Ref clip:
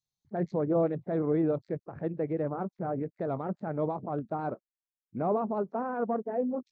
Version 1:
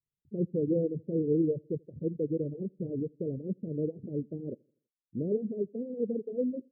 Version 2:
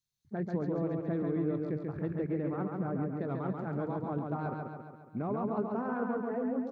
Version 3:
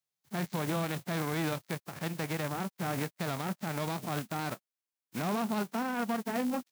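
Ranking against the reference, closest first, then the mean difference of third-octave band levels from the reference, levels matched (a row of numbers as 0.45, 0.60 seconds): 2, 1, 3; 5.0, 7.0, 16.0 decibels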